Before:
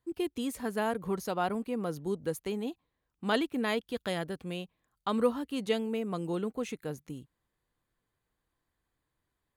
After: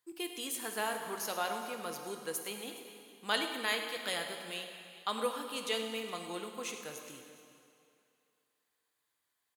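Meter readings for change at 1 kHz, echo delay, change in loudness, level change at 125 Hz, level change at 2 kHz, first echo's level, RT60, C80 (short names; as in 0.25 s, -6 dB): -2.0 dB, 0.103 s, -3.5 dB, -15.5 dB, +1.5 dB, -14.0 dB, 2.5 s, 5.5 dB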